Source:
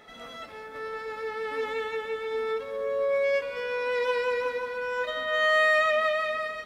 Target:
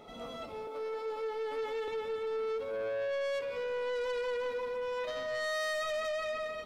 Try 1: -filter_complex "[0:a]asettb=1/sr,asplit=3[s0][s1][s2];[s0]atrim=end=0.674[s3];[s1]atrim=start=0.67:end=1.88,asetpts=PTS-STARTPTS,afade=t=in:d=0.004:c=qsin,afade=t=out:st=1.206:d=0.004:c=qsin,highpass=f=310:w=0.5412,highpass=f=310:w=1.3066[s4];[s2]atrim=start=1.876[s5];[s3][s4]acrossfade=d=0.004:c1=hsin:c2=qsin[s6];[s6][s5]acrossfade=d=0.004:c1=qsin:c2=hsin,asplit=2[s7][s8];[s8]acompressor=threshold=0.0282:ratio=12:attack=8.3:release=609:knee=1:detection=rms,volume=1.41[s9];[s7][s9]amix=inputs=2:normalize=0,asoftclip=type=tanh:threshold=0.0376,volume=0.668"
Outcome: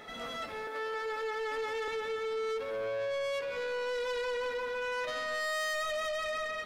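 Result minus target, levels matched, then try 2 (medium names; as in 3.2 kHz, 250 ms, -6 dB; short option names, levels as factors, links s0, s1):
2 kHz band +3.0 dB
-filter_complex "[0:a]asettb=1/sr,asplit=3[s0][s1][s2];[s0]atrim=end=0.674[s3];[s1]atrim=start=0.67:end=1.88,asetpts=PTS-STARTPTS,afade=t=in:d=0.004:c=qsin,afade=t=out:st=1.206:d=0.004:c=qsin,highpass=f=310:w=0.5412,highpass=f=310:w=1.3066[s4];[s2]atrim=start=1.876[s5];[s3][s4]acrossfade=d=0.004:c1=hsin:c2=qsin[s6];[s6][s5]acrossfade=d=0.004:c1=qsin:c2=hsin,asplit=2[s7][s8];[s8]acompressor=threshold=0.0282:ratio=12:attack=8.3:release=609:knee=1:detection=rms,lowpass=f=1700:w=0.5412,lowpass=f=1700:w=1.3066,volume=1.41[s9];[s7][s9]amix=inputs=2:normalize=0,asoftclip=type=tanh:threshold=0.0376,volume=0.668"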